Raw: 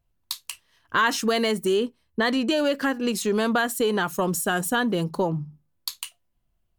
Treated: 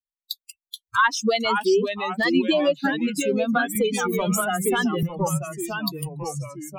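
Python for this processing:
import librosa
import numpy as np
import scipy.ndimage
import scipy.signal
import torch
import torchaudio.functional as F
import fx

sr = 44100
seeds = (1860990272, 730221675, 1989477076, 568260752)

y = fx.bin_expand(x, sr, power=3.0)
y = fx.echo_pitch(y, sr, ms=391, semitones=-2, count=3, db_per_echo=-6.0)
y = fx.band_squash(y, sr, depth_pct=100, at=(3.75, 5.03))
y = y * librosa.db_to_amplitude(6.0)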